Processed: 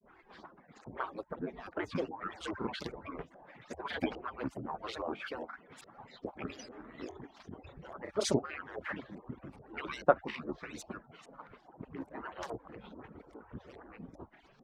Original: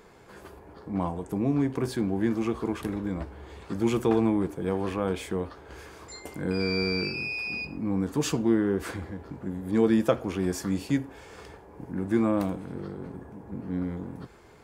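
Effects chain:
harmonic-percussive split with one part muted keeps percussive
auto-filter low-pass saw up 2.4 Hz 620–6,400 Hz
granular cloud, spray 21 ms, pitch spread up and down by 7 semitones
level −2.5 dB

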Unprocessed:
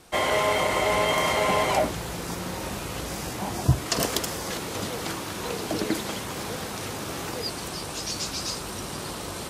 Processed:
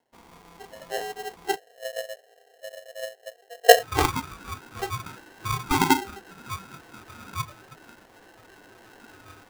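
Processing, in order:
inverse Chebyshev low-pass filter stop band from 1,800 Hz, stop band 70 dB, from 0:01.55 stop band from 650 Hz, from 0:03.75 stop band from 2,800 Hz
noise reduction from a noise print of the clip's start 26 dB
ring modulator with a square carrier 590 Hz
level +8.5 dB

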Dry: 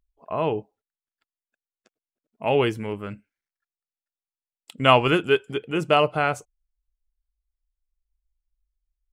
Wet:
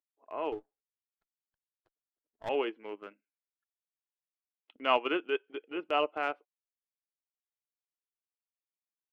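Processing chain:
elliptic band-pass filter 290–3,000 Hz, stop band 40 dB
transient designer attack −5 dB, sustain −9 dB
0:00.52–0:02.49: windowed peak hold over 9 samples
level −8 dB

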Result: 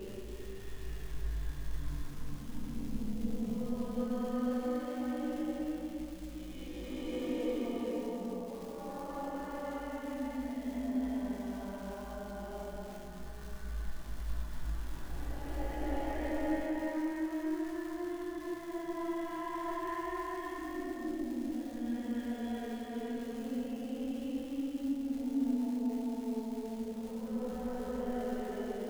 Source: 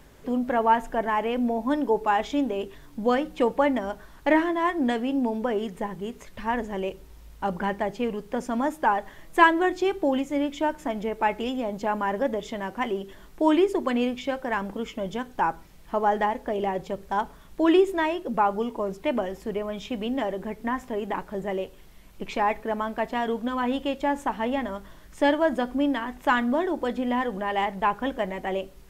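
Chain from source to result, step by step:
low-shelf EQ 420 Hz +11 dB
downward compressor 16 to 1, threshold −34 dBFS, peak gain reduction 26 dB
multi-voice chorus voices 2, 1.2 Hz, delay 19 ms, depth 3 ms
extreme stretch with random phases 10×, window 0.25 s, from 0:02.67
surface crackle 420 per second −45 dBFS
convolution reverb RT60 0.70 s, pre-delay 13 ms, DRR 1 dB

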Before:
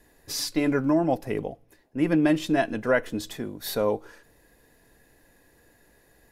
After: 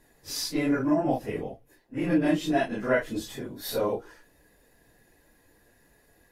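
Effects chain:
random phases in long frames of 100 ms
level −2 dB

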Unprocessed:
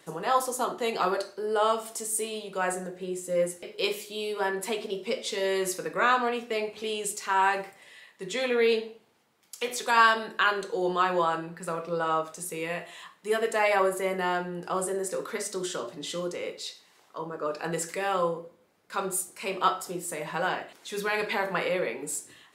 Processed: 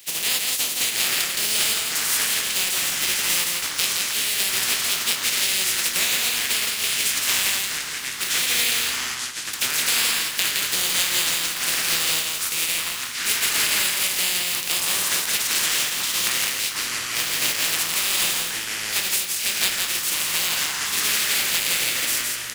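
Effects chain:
compressing power law on the bin magnitudes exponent 0.2
high shelf with overshoot 1,800 Hz +9.5 dB, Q 1.5
downward compressor, threshold −22 dBFS, peak gain reduction 15.5 dB
delay with pitch and tempo change per echo 699 ms, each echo −7 semitones, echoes 2, each echo −6 dB
single-tap delay 167 ms −3.5 dB
level +1.5 dB

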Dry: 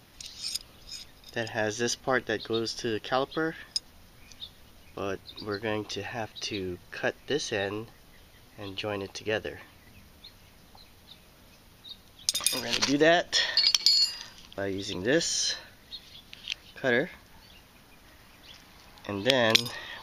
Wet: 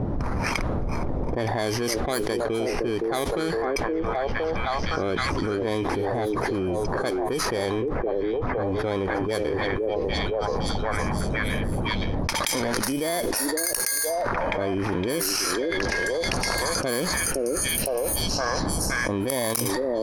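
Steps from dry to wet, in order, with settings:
samples in bit-reversed order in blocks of 16 samples
low-pass that shuts in the quiet parts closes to 530 Hz, open at −21.5 dBFS
on a send: echo through a band-pass that steps 514 ms, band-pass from 390 Hz, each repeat 0.7 octaves, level −4.5 dB
on the sum: envelope flattener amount 100%
level −6.5 dB

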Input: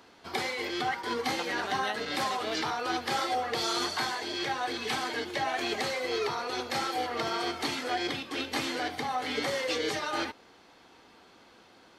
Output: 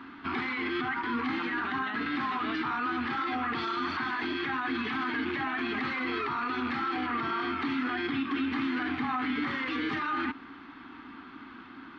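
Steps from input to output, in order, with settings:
loose part that buzzes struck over −52 dBFS, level −36 dBFS
drawn EQ curve 190 Hz 0 dB, 270 Hz +13 dB, 530 Hz −18 dB, 1,200 Hz +9 dB, 3,500 Hz +1 dB, 7,300 Hz −17 dB
brickwall limiter −29 dBFS, peak gain reduction 14.5 dB
head-to-tape spacing loss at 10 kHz 20 dB
level +8 dB

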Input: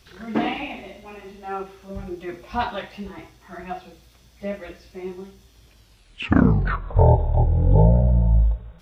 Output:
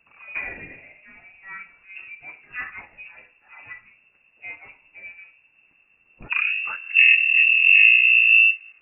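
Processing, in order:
0:06.89–0:08.51: low-shelf EQ 290 Hz +8.5 dB
voice inversion scrambler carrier 2,700 Hz
level −8 dB

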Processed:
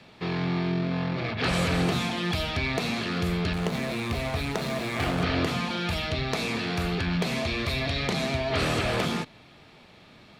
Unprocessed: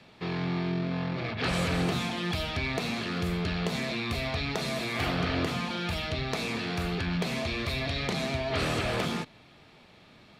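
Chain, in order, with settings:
0:03.53–0:05.23: slack as between gear wheels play −31 dBFS
level +3 dB

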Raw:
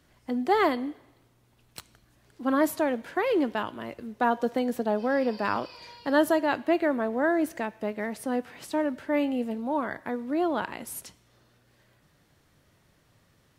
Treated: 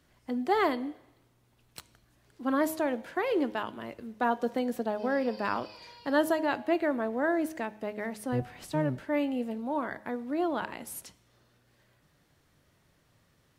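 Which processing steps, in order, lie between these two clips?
0:08.32–0:09.04: sub-octave generator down 1 octave, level +2 dB
hum removal 105.5 Hz, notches 9
level −3 dB

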